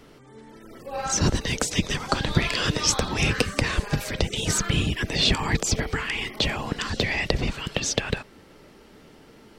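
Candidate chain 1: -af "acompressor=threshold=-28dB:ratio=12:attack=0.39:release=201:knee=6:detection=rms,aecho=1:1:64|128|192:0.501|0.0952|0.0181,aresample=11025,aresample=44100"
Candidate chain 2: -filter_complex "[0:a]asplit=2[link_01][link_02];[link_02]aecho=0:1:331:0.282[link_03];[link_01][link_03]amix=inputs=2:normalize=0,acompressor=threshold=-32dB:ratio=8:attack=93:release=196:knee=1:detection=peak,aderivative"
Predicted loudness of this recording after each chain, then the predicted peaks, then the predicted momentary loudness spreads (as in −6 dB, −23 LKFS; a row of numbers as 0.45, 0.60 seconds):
−36.5, −36.5 LKFS; −22.0, −11.5 dBFS; 15, 7 LU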